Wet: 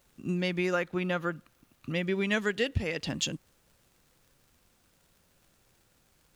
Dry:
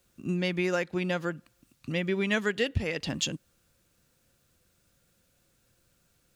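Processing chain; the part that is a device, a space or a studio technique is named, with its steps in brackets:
0:00.73–0:01.95: thirty-one-band graphic EQ 1,250 Hz +7 dB, 5,000 Hz −10 dB, 8,000 Hz −11 dB
vinyl LP (surface crackle; pink noise bed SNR 36 dB)
level −1 dB

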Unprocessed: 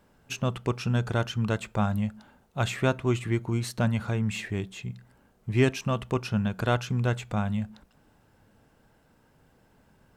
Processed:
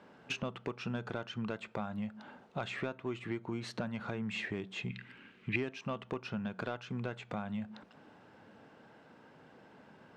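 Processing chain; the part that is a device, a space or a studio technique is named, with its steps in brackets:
AM radio (band-pass filter 200–3,700 Hz; downward compressor 6 to 1, threshold −41 dBFS, peak gain reduction 21 dB; soft clipping −30 dBFS, distortion −20 dB)
0:04.89–0:05.56: drawn EQ curve 340 Hz 0 dB, 680 Hz −13 dB, 2,500 Hz +15 dB, 5,500 Hz −1 dB
level +6.5 dB

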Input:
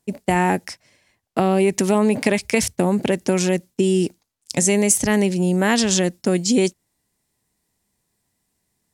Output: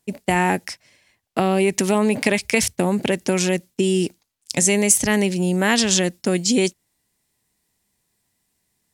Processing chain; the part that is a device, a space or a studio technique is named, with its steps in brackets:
presence and air boost (parametric band 2,800 Hz +4.5 dB 1.9 octaves; high-shelf EQ 9,600 Hz +5.5 dB)
level −1.5 dB

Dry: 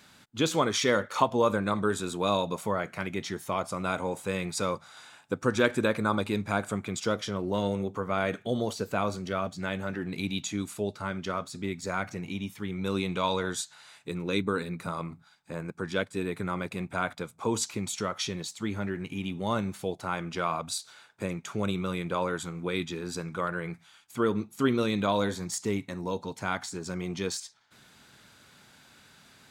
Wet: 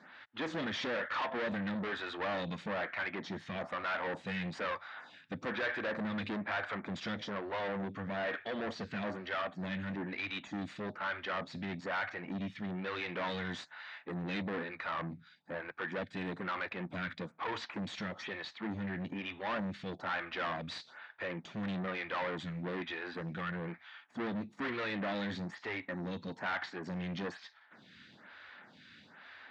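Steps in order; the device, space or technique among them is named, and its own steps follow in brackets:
vibe pedal into a guitar amplifier (phaser with staggered stages 1.1 Hz; tube saturation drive 38 dB, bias 0.4; loudspeaker in its box 110–4,000 Hz, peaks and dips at 130 Hz −7 dB, 410 Hz −6 dB, 1,800 Hz +9 dB)
level +5 dB

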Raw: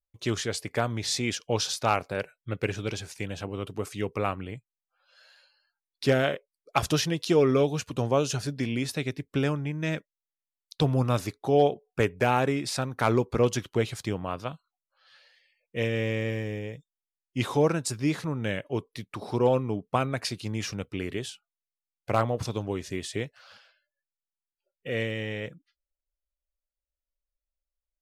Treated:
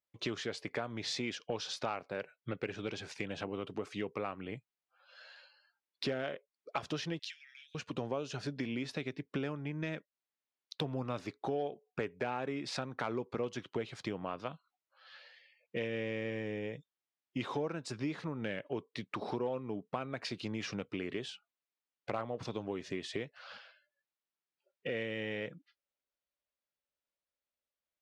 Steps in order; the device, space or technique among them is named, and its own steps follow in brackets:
AM radio (band-pass filter 170–4,000 Hz; downward compressor 4 to 1, threshold −39 dBFS, peak gain reduction 18.5 dB; soft clipping −24 dBFS, distortion −27 dB)
0:07.19–0:07.75: Butterworth high-pass 1,600 Hz 96 dB per octave
level +3.5 dB

